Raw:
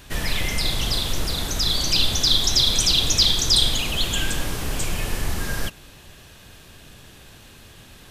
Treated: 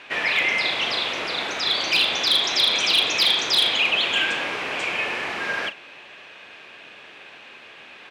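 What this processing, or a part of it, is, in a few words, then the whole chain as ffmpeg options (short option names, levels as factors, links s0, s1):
megaphone: -filter_complex "[0:a]highpass=480,lowpass=2700,equalizer=f=2400:t=o:w=0.54:g=8.5,asoftclip=type=hard:threshold=0.133,asplit=2[s0][s1];[s1]adelay=38,volume=0.224[s2];[s0][s2]amix=inputs=2:normalize=0,volume=1.88"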